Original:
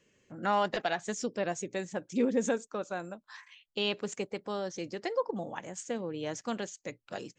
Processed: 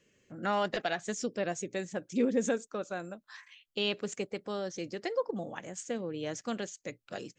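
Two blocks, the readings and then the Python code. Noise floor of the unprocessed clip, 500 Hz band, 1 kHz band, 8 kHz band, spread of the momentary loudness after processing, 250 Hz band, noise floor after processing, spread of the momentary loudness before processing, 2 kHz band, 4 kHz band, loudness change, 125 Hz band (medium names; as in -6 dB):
-77 dBFS, -0.5 dB, -3.0 dB, 0.0 dB, 12 LU, 0.0 dB, -77 dBFS, 13 LU, -0.5 dB, 0.0 dB, -0.5 dB, 0.0 dB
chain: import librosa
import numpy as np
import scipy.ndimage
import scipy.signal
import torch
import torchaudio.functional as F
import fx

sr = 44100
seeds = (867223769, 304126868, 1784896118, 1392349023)

y = fx.peak_eq(x, sr, hz=920.0, db=-6.0, octaves=0.46)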